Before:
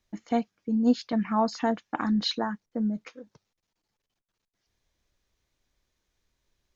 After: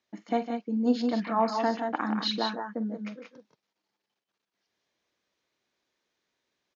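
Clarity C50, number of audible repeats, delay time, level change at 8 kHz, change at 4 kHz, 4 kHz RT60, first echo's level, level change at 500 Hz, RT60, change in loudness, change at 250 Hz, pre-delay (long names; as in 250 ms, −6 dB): no reverb audible, 2, 45 ms, can't be measured, 0.0 dB, no reverb audible, −13.0 dB, +1.0 dB, no reverb audible, −1.0 dB, −3.0 dB, no reverb audible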